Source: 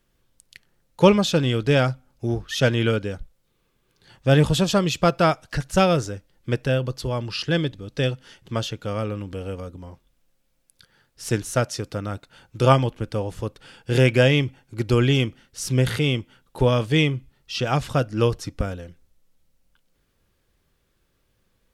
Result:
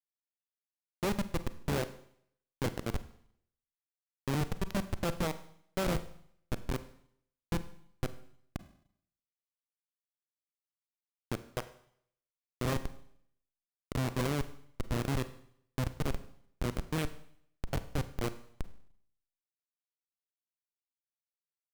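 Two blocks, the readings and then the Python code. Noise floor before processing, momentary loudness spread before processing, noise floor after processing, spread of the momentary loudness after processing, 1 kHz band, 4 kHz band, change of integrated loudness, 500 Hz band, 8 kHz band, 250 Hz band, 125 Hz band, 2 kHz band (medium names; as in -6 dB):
-69 dBFS, 14 LU, under -85 dBFS, 14 LU, -15.5 dB, -18.0 dB, -14.5 dB, -18.0 dB, -12.5 dB, -14.5 dB, -16.0 dB, -16.0 dB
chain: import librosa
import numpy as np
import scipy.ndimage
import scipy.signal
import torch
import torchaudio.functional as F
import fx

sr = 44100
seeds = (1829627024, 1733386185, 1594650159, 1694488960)

y = fx.echo_alternate(x, sr, ms=620, hz=840.0, feedback_pct=60, wet_db=-11.5)
y = fx.schmitt(y, sr, flips_db=-14.0)
y = fx.rev_schroeder(y, sr, rt60_s=0.66, comb_ms=33, drr_db=12.5)
y = y * librosa.db_to_amplitude(-6.0)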